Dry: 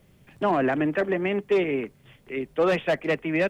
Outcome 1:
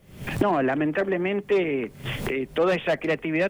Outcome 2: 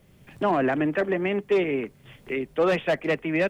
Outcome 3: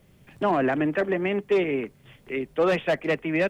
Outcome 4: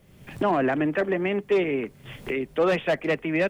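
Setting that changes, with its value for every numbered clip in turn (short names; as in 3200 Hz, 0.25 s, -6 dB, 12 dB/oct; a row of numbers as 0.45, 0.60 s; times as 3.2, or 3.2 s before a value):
recorder AGC, rising by: 87, 13, 5.3, 35 dB/s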